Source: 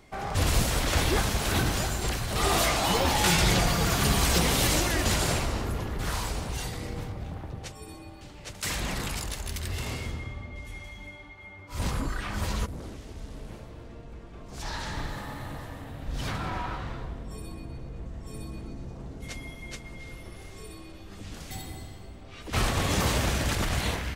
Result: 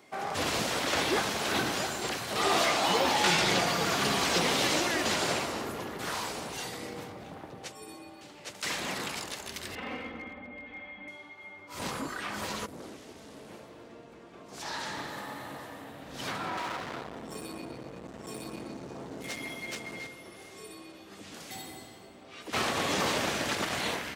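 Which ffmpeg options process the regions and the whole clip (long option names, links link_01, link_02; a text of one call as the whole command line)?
ffmpeg -i in.wav -filter_complex "[0:a]asettb=1/sr,asplit=3[link_01][link_02][link_03];[link_01]atrim=end=9.754[link_04];[link_02]atrim=start=9.75:end=11.08,asetpts=PTS-STARTPTS,afade=type=in:duration=0.004:curve=qsin,afade=type=out:start_time=1.326:duration=0.004:curve=qsin,lowpass=frequency=2600:width=0.5412,lowpass=frequency=2600:width=1.3066,aeval=exprs='clip(val(0),-1,0.0237)':channel_layout=same,aecho=1:1:3.9:0.8,atrim=end_sample=58653[link_05];[link_03]atrim=start=11.076[link_06];[link_04][link_05]acrossfade=duration=0.004:curve1=hsin:curve2=qsin[link_07];[link_07][link_06]acrossfade=duration=0.004:curve1=qsin:curve2=hsin,asettb=1/sr,asplit=3[link_08][link_09][link_10];[link_08]atrim=end=16.574[link_11];[link_09]atrim=start=16.57:end=20.07,asetpts=PTS-STARTPTS,afade=type=in:duration=0.004:curve=qsin,afade=type=out:start_time=3.496:duration=0.004:curve=qsin,acontrast=80,asoftclip=type=hard:threshold=-31.5dB[link_12];[link_10]atrim=start=20.066[link_13];[link_11][link_12]acrossfade=duration=0.004:curve1=hsin:curve2=qsin[link_14];[link_14][link_13]acrossfade=duration=0.004:curve1=qsin:curve2=hsin,highpass=250,acrossover=split=6600[link_15][link_16];[link_16]acompressor=threshold=-44dB:ratio=4:attack=1:release=60[link_17];[link_15][link_17]amix=inputs=2:normalize=0" out.wav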